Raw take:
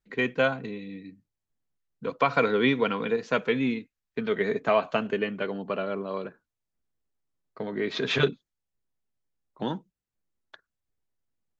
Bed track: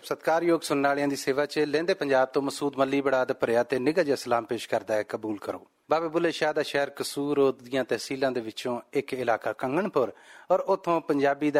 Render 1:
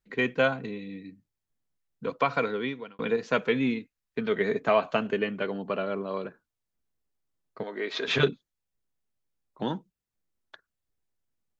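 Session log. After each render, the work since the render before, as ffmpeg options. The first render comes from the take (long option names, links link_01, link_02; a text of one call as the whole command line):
ffmpeg -i in.wav -filter_complex "[0:a]asettb=1/sr,asplit=3[link_01][link_02][link_03];[link_01]atrim=end=7.634[link_04];[link_02]atrim=start=7.63:end=8.08,asetpts=PTS-STARTPTS,afade=type=in:duration=0.004:curve=qsin,afade=type=out:start_time=0.446:duration=0.004:curve=qsin,highpass=420[link_05];[link_03]atrim=start=8.076[link_06];[link_04][link_05]acrossfade=duration=0.004:curve1=hsin:curve2=qsin[link_07];[link_07][link_06]acrossfade=duration=0.004:curve1=qsin:curve2=hsin,asplit=2[link_08][link_09];[link_08]atrim=end=2.99,asetpts=PTS-STARTPTS,afade=type=out:start_time=2.06:duration=0.93[link_10];[link_09]atrim=start=2.99,asetpts=PTS-STARTPTS,afade=type=in:duration=0.004:curve=hsin[link_11];[link_10][link_11]concat=n=2:v=0:a=1" out.wav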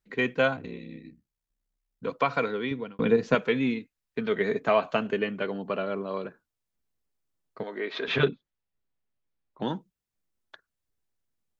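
ffmpeg -i in.wav -filter_complex "[0:a]asettb=1/sr,asplit=3[link_01][link_02][link_03];[link_01]atrim=end=0.564[link_04];[link_02]atrim=start=0.56:end=2.04,asetpts=PTS-STARTPTS,afade=type=in:duration=0.004:curve=qsin,afade=type=out:start_time=1.476:duration=0.004:curve=qsin,aeval=exprs='val(0)*sin(2*PI*32*n/s)':channel_layout=same[link_05];[link_03]atrim=start=2.036[link_06];[link_04][link_05]acrossfade=duration=0.004:curve1=hsin:curve2=qsin[link_07];[link_07][link_06]acrossfade=duration=0.004:curve1=qsin:curve2=hsin,asettb=1/sr,asplit=3[link_08][link_09][link_10];[link_08]atrim=end=2.714[link_11];[link_09]atrim=start=2.71:end=3.35,asetpts=PTS-STARTPTS,afade=type=in:duration=0.004:curve=qsin,afade=type=out:start_time=0.636:duration=0.004:curve=qsin,lowshelf=frequency=400:gain=10.5[link_12];[link_10]atrim=start=3.346[link_13];[link_11][link_12]acrossfade=duration=0.004:curve1=hsin:curve2=qsin[link_14];[link_14][link_13]acrossfade=duration=0.004:curve1=qsin:curve2=hsin,asettb=1/sr,asplit=3[link_15][link_16][link_17];[link_15]atrim=end=7.784[link_18];[link_16]atrim=start=7.78:end=9.62,asetpts=PTS-STARTPTS,afade=type=in:duration=0.004:curve=qsin,afade=type=out:start_time=1.836:duration=0.004:curve=qsin,lowpass=3500[link_19];[link_17]atrim=start=9.616[link_20];[link_18][link_19]acrossfade=duration=0.004:curve1=hsin:curve2=qsin[link_21];[link_21][link_20]acrossfade=duration=0.004:curve1=qsin:curve2=hsin" out.wav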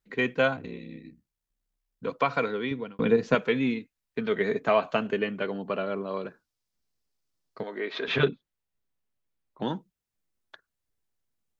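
ffmpeg -i in.wav -filter_complex "[0:a]asettb=1/sr,asplit=3[link_01][link_02][link_03];[link_01]atrim=end=6.254[link_04];[link_02]atrim=start=6.25:end=7.61,asetpts=PTS-STARTPTS,afade=type=in:duration=0.004:curve=qsin,afade=type=out:start_time=1.356:duration=0.004:curve=qsin,equalizer=frequency=5000:width=1.5:gain=7.5[link_05];[link_03]atrim=start=7.606[link_06];[link_04][link_05]acrossfade=duration=0.004:curve1=hsin:curve2=qsin[link_07];[link_07][link_06]acrossfade=duration=0.004:curve1=qsin:curve2=hsin" out.wav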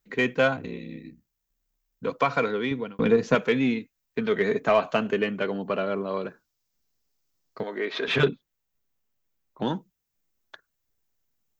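ffmpeg -i in.wav -filter_complex "[0:a]asplit=2[link_01][link_02];[link_02]asoftclip=type=tanh:threshold=-23dB,volume=-6dB[link_03];[link_01][link_03]amix=inputs=2:normalize=0,aexciter=amount=1.3:drive=2.5:freq=5700" out.wav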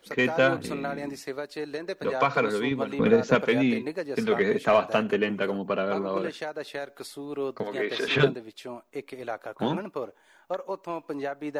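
ffmpeg -i in.wav -i bed.wav -filter_complex "[1:a]volume=-8.5dB[link_01];[0:a][link_01]amix=inputs=2:normalize=0" out.wav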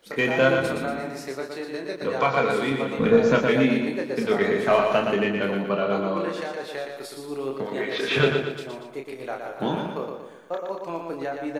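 ffmpeg -i in.wav -filter_complex "[0:a]asplit=2[link_01][link_02];[link_02]adelay=30,volume=-5dB[link_03];[link_01][link_03]amix=inputs=2:normalize=0,aecho=1:1:118|236|354|472|590|708:0.562|0.27|0.13|0.0622|0.0299|0.0143" out.wav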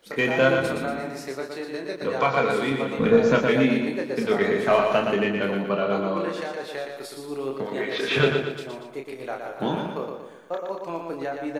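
ffmpeg -i in.wav -af anull out.wav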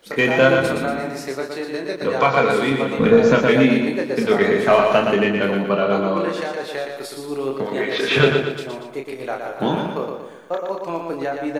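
ffmpeg -i in.wav -af "volume=5.5dB,alimiter=limit=-3dB:level=0:latency=1" out.wav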